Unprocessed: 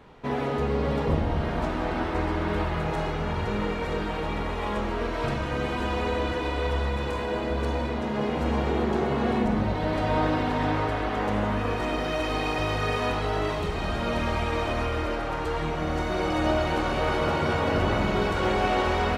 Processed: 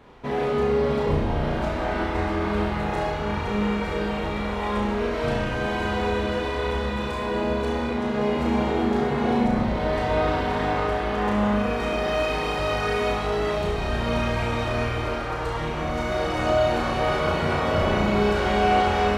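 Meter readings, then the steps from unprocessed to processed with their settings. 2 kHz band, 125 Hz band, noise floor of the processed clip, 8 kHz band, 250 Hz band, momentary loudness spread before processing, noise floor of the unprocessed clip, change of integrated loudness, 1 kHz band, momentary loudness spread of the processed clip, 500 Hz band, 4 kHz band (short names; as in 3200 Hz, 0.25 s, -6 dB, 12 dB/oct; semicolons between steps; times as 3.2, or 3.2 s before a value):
+2.5 dB, +0.5 dB, -28 dBFS, +2.5 dB, +2.5 dB, 5 LU, -30 dBFS, +2.5 dB, +2.5 dB, 5 LU, +3.5 dB, +2.0 dB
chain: flutter echo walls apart 5.8 m, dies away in 0.53 s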